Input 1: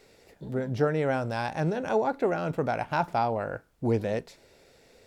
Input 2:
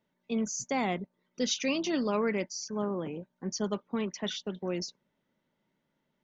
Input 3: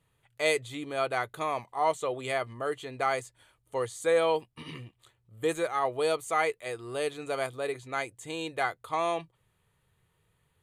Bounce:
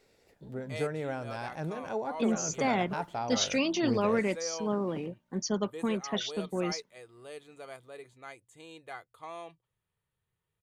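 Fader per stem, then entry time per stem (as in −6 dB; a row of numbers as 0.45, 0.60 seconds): −8.5, +1.5, −14.0 decibels; 0.00, 1.90, 0.30 seconds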